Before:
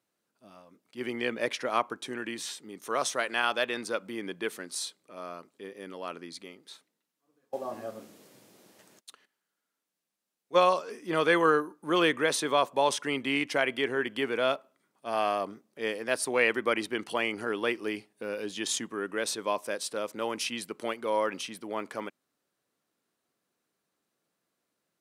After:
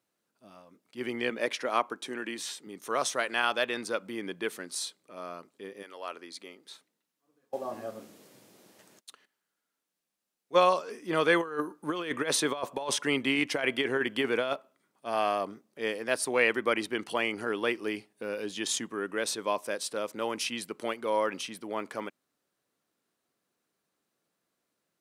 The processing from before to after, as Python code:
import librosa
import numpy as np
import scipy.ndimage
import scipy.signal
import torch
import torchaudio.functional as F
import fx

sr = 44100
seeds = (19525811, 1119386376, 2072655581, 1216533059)

y = fx.highpass(x, sr, hz=180.0, slope=12, at=(1.3, 2.67))
y = fx.highpass(y, sr, hz=fx.line((5.82, 660.0), (6.64, 210.0)), slope=12, at=(5.82, 6.64), fade=0.02)
y = fx.over_compress(y, sr, threshold_db=-28.0, ratio=-0.5, at=(11.4, 14.53))